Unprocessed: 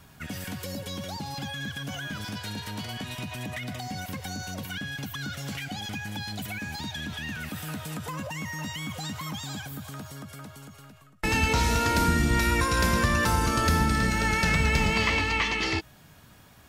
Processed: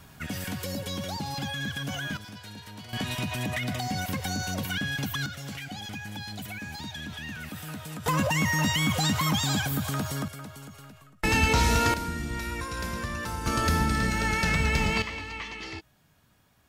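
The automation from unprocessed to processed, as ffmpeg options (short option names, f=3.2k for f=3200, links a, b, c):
-af "asetnsamples=n=441:p=0,asendcmd='2.17 volume volume -8dB;2.93 volume volume 4.5dB;5.26 volume volume -3dB;8.06 volume volume 9.5dB;10.28 volume volume 1.5dB;11.94 volume volume -9.5dB;13.46 volume volume -1.5dB;15.02 volume volume -11dB',volume=2dB"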